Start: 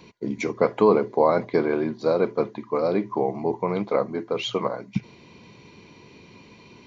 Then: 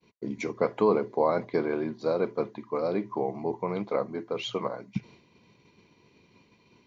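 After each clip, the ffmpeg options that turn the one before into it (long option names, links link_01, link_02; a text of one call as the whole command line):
ffmpeg -i in.wav -af "agate=range=-33dB:threshold=-42dB:ratio=3:detection=peak,volume=-5.5dB" out.wav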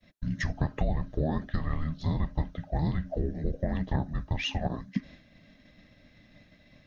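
ffmpeg -i in.wav -af "acompressor=threshold=-27dB:ratio=6,afreqshift=-390,volume=3.5dB" out.wav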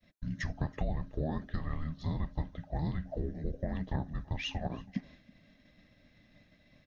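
ffmpeg -i in.wav -af "aecho=1:1:326:0.0668,volume=-5.5dB" out.wav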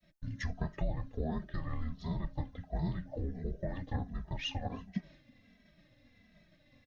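ffmpeg -i in.wav -filter_complex "[0:a]asplit=2[link_01][link_02];[link_02]adelay=2.7,afreqshift=-1.4[link_03];[link_01][link_03]amix=inputs=2:normalize=1,volume=1.5dB" out.wav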